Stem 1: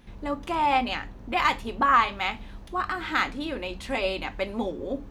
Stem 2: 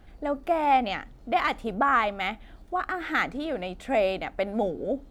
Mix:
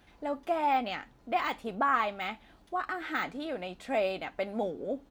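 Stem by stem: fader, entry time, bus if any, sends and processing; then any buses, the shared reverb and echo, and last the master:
-7.0 dB, 0.00 s, no send, Chebyshev high-pass 760 Hz, order 8; comb 7 ms, depth 91%; auto duck -8 dB, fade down 0.45 s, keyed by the second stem
-5.0 dB, 0.00 s, no send, de-esser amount 90%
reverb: none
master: high-pass 130 Hz 6 dB/octave

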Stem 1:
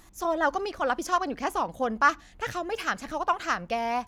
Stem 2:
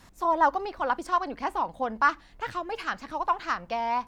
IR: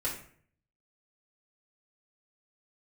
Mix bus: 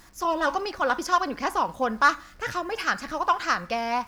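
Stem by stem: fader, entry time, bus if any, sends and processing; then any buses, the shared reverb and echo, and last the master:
0.0 dB, 0.00 s, no send, word length cut 10-bit, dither none
-16.0 dB, 0.00 s, send -5 dB, peaking EQ 1.5 kHz +14.5 dB 2 oct; saturation -12 dBFS, distortion -8 dB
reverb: on, RT60 0.55 s, pre-delay 4 ms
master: peaking EQ 5 kHz +7.5 dB 0.36 oct

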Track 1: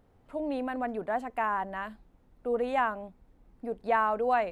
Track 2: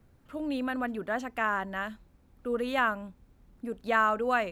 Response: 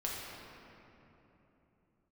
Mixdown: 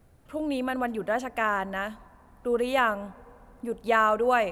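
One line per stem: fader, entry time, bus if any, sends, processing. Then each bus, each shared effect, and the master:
-8.0 dB, 0.00 s, send -13 dB, none
+2.5 dB, 0.00 s, no send, fifteen-band graphic EQ 250 Hz -4 dB, 630 Hz +4 dB, 10 kHz +7 dB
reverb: on, RT60 3.3 s, pre-delay 6 ms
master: none

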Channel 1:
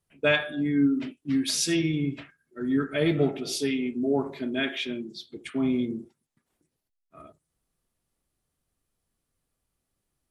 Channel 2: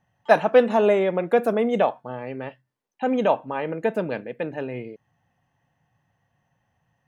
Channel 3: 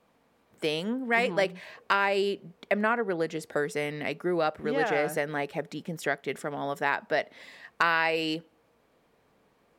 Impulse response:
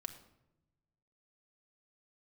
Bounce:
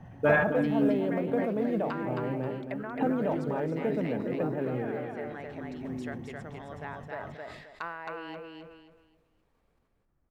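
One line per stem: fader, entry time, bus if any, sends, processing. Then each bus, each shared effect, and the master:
+2.0 dB, 0.00 s, no send, echo send -16.5 dB, low-pass 1.7 kHz 24 dB/octave; bass shelf 140 Hz +6.5 dB; auto duck -20 dB, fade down 1.95 s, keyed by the second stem
-15.0 dB, 0.00 s, no send, echo send -9 dB, tilt EQ -4 dB/octave; three bands compressed up and down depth 100%
-13.0 dB, 0.00 s, no send, echo send -3 dB, low-pass that closes with the level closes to 1.3 kHz, closed at -22 dBFS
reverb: none
echo: feedback delay 267 ms, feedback 29%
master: short-mantissa float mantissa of 6-bit; decay stretcher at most 45 dB/s

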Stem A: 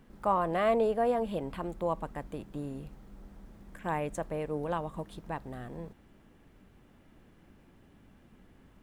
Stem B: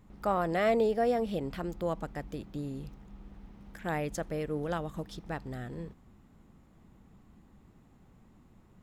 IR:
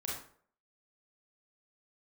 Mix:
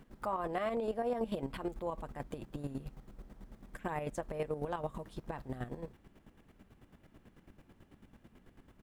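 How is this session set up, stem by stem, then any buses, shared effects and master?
+2.0 dB, 0.00 s, no send, none
-8.0 dB, 7.9 ms, no send, none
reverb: none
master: square tremolo 9.1 Hz, depth 65%, duty 30%; peak limiter -26.5 dBFS, peak gain reduction 10.5 dB

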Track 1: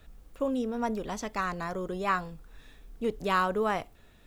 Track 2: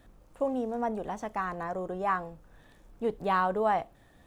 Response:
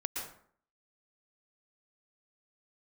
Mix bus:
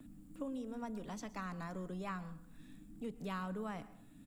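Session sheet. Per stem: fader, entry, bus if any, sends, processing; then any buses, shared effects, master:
-11.5 dB, 0.00 s, send -15 dB, compression 4:1, threshold -30 dBFS, peak gain reduction 8 dB
-2.0 dB, 3.2 ms, send -6.5 dB, treble shelf 7.1 kHz -9.5 dB; FFT band-reject 320–6900 Hz; three bands compressed up and down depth 70%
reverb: on, RT60 0.55 s, pre-delay 107 ms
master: peaking EQ 62 Hz -15 dB 2.8 oct

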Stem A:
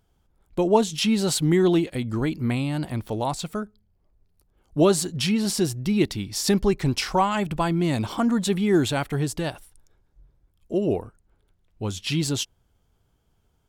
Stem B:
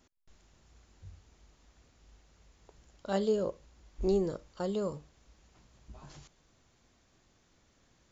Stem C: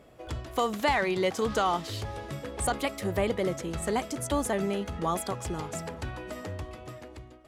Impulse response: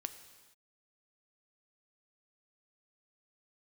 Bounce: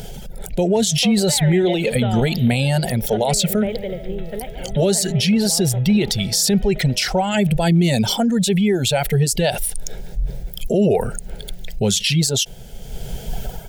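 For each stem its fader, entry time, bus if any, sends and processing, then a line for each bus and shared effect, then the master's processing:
+1.0 dB, 0.00 s, no send, no echo send, reverb removal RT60 1.7 s; level flattener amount 70%
-3.0 dB, 0.00 s, no send, no echo send, spectral gate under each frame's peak -25 dB strong
-0.5 dB, 0.45 s, no send, echo send -12.5 dB, Chebyshev low-pass 3.8 kHz, order 8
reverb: none
echo: delay 144 ms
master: level rider; static phaser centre 300 Hz, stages 6; peak limiter -8.5 dBFS, peak gain reduction 7 dB

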